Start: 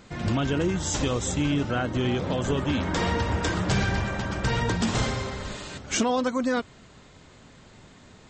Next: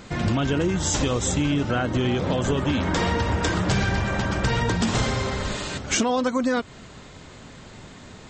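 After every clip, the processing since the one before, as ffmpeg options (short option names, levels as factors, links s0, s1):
-af "acompressor=threshold=0.0355:ratio=2.5,volume=2.37"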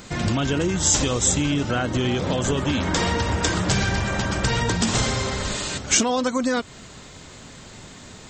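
-af "highshelf=f=5200:g=11.5"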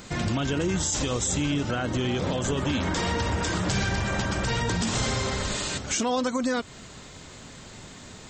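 -af "alimiter=limit=0.168:level=0:latency=1:release=55,volume=0.794"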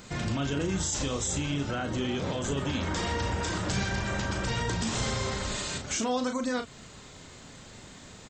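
-filter_complex "[0:a]asplit=2[s0][s1];[s1]adelay=36,volume=0.447[s2];[s0][s2]amix=inputs=2:normalize=0,volume=0.596"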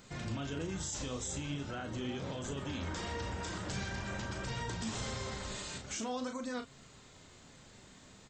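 -af "flanger=delay=7.3:depth=8.5:regen=77:speed=0.44:shape=sinusoidal,volume=0.596"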